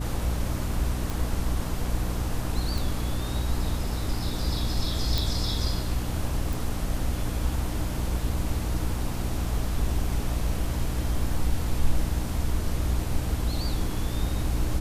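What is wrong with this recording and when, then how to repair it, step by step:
mains hum 60 Hz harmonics 5 −31 dBFS
0:01.10: click
0:02.78: click
0:05.18: click
0:06.53: click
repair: click removal
hum removal 60 Hz, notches 5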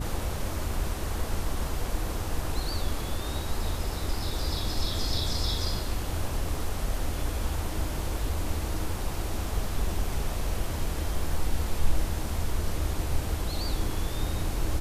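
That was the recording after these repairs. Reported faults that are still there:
none of them is left

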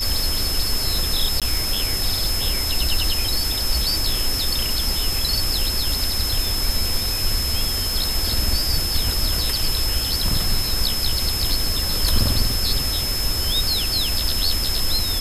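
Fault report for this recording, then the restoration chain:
surface crackle 27 per second −24 dBFS
whistle 5,200 Hz −24 dBFS
0:01.40–0:01.42: drop-out 17 ms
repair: click removal
notch filter 5,200 Hz, Q 30
repair the gap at 0:01.40, 17 ms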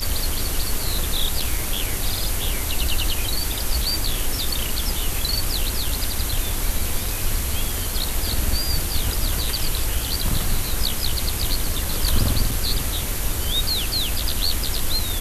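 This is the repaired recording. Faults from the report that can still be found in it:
none of them is left

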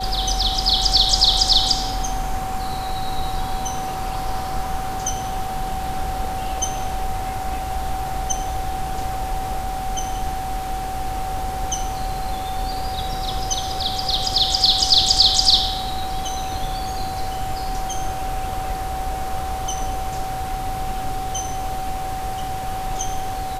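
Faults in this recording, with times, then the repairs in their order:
whistle 760 Hz −26 dBFS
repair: notch filter 760 Hz, Q 30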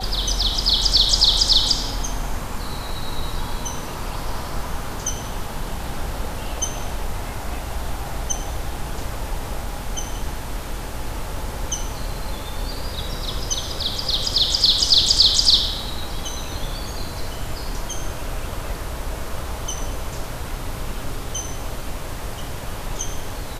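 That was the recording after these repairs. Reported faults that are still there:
none of them is left

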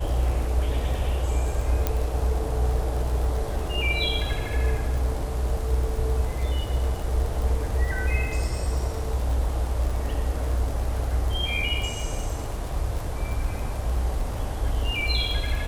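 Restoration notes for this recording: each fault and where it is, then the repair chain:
surface crackle 51 per second −30 dBFS
0:01.87: click −9 dBFS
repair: click removal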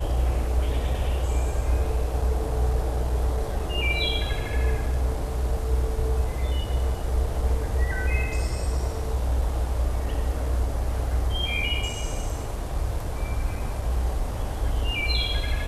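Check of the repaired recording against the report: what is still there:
none of them is left

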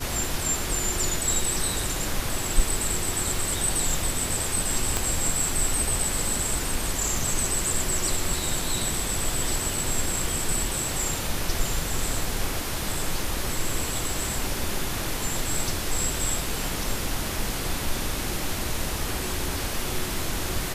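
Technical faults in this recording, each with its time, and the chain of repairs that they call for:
0:04.97: click −8 dBFS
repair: click removal

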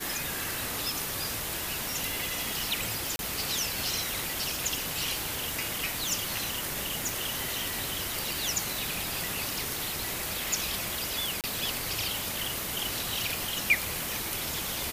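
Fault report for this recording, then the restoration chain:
0:03.16–0:03.19: drop-out 31 ms
0:06.09: click
0:07.09: click
0:11.41–0:11.44: drop-out 28 ms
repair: click removal
repair the gap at 0:03.16, 31 ms
repair the gap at 0:11.41, 28 ms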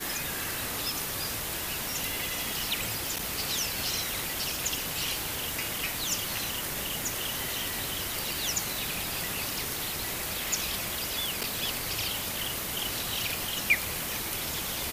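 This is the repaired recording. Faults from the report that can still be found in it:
none of them is left

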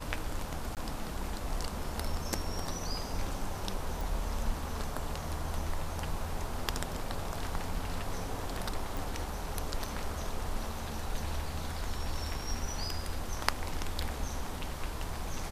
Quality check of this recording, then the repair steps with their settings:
0:00.75–0:00.77: drop-out 18 ms
0:04.01: click
0:08.97: click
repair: click removal
repair the gap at 0:00.75, 18 ms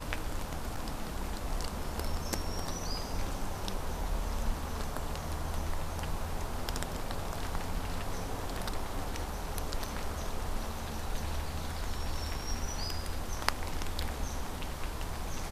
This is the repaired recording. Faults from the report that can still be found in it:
none of them is left

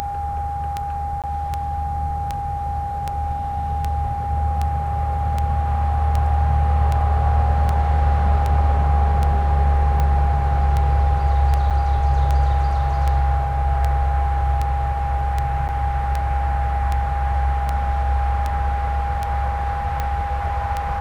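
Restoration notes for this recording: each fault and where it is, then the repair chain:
scratch tick 78 rpm −10 dBFS
whistle 810 Hz −24 dBFS
0:01.22–0:01.24: drop-out 17 ms
0:11.70–0:11.71: drop-out 7.3 ms
0:15.68–0:15.69: drop-out 8.8 ms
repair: click removal
notch filter 810 Hz, Q 30
repair the gap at 0:01.22, 17 ms
repair the gap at 0:11.70, 7.3 ms
repair the gap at 0:15.68, 8.8 ms

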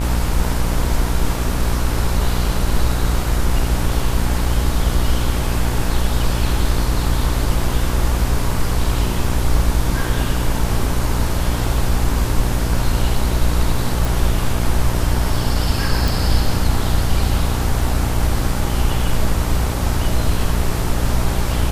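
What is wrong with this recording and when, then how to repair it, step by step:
mains buzz 60 Hz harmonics 39 −21 dBFS
0:14.05: click
0:16.08: click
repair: click removal
hum removal 60 Hz, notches 39

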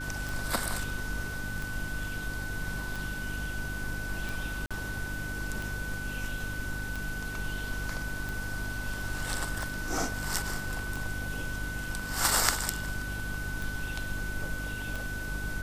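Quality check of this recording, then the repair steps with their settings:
mains hum 50 Hz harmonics 6 −39 dBFS
scratch tick 45 rpm
whistle 1,500 Hz −37 dBFS
0:04.66–0:04.71: drop-out 46 ms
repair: click removal
hum removal 50 Hz, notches 6
notch filter 1,500 Hz, Q 30
repair the gap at 0:04.66, 46 ms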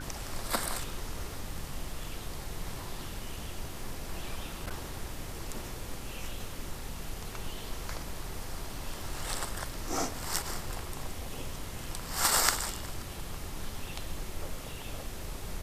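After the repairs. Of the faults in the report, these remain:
none of them is left

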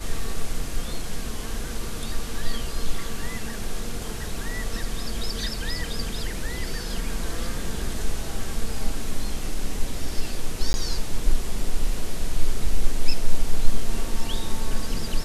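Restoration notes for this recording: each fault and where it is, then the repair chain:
0:10.73–0:10.74: drop-out 11 ms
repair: repair the gap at 0:10.73, 11 ms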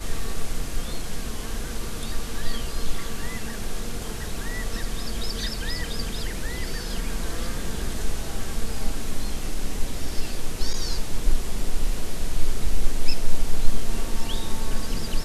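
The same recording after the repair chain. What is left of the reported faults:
none of them is left

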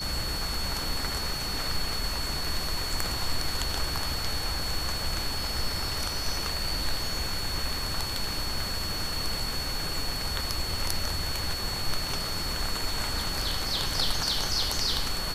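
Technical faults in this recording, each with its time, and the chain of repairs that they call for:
whistle 4,400 Hz −33 dBFS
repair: notch filter 4,400 Hz, Q 30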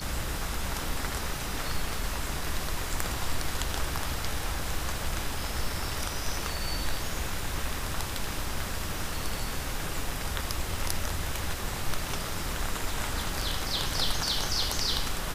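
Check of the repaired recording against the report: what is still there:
none of them is left

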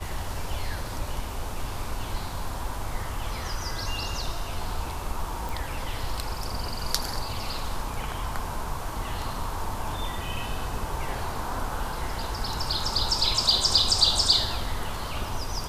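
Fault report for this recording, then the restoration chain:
0:05.49: click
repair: click removal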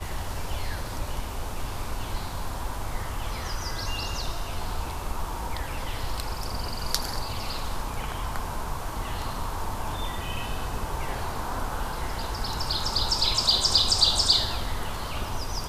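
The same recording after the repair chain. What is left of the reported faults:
none of them is left

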